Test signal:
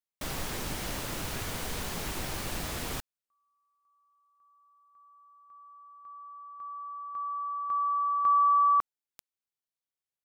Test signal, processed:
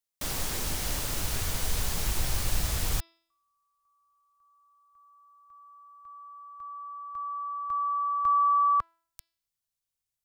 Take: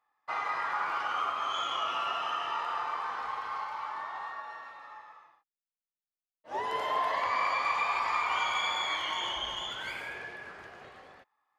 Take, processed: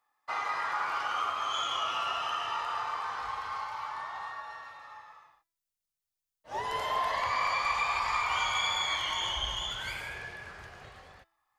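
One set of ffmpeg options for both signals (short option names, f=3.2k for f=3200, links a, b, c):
-filter_complex "[0:a]bandreject=f=332.3:t=h:w=4,bandreject=f=664.6:t=h:w=4,bandreject=f=996.9:t=h:w=4,bandreject=f=1.3292k:t=h:w=4,bandreject=f=1.6615k:t=h:w=4,bandreject=f=1.9938k:t=h:w=4,bandreject=f=2.3261k:t=h:w=4,bandreject=f=2.6584k:t=h:w=4,bandreject=f=2.9907k:t=h:w=4,bandreject=f=3.323k:t=h:w=4,bandreject=f=3.6553k:t=h:w=4,bandreject=f=3.9876k:t=h:w=4,bandreject=f=4.3199k:t=h:w=4,bandreject=f=4.6522k:t=h:w=4,bandreject=f=4.9845k:t=h:w=4,bandreject=f=5.3168k:t=h:w=4,asubboost=boost=6:cutoff=110,acrossover=split=580|4000[a][b][c];[c]acontrast=65[d];[a][b][d]amix=inputs=3:normalize=0"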